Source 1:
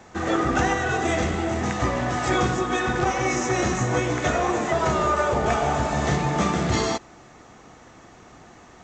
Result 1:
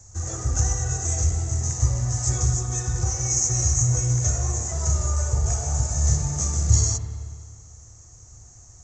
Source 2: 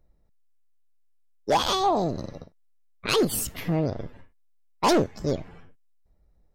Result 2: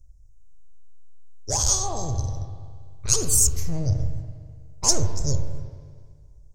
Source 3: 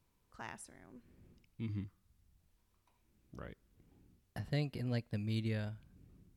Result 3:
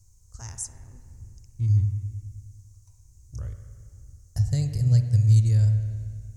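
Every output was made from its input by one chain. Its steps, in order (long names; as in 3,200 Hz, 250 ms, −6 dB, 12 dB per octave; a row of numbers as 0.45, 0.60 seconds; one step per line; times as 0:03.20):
drawn EQ curve 110 Hz 0 dB, 190 Hz −25 dB, 300 Hz −26 dB, 490 Hz −23 dB, 2,500 Hz −28 dB, 3,500 Hz −27 dB, 6,500 Hz +6 dB, 12,000 Hz −12 dB
spring reverb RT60 1.9 s, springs 41/56 ms, chirp 55 ms, DRR 6 dB
loudness normalisation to −23 LKFS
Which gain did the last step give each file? +8.5, +14.0, +22.0 decibels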